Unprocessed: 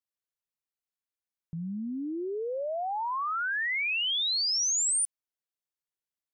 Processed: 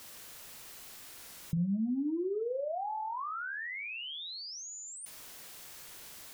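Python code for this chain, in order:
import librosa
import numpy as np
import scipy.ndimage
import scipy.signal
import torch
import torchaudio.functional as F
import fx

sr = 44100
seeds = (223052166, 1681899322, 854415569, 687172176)

y = x + 0.5 * 10.0 ** (-47.0 / 20.0) * np.sign(x)
y = fx.over_compress(y, sr, threshold_db=-35.0, ratio=-0.5)
y = fx.room_flutter(y, sr, wall_m=7.0, rt60_s=0.27)
y = fx.spec_gate(y, sr, threshold_db=-30, keep='strong')
y = fx.record_warp(y, sr, rpm=33.33, depth_cents=160.0)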